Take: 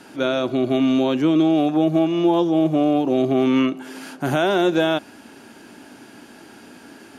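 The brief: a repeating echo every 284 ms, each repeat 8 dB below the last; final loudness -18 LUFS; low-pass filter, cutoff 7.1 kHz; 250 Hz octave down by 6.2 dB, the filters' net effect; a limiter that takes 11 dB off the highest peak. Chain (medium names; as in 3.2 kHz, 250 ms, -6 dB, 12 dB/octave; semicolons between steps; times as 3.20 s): low-pass 7.1 kHz; peaking EQ 250 Hz -8.5 dB; peak limiter -20 dBFS; feedback delay 284 ms, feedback 40%, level -8 dB; trim +11 dB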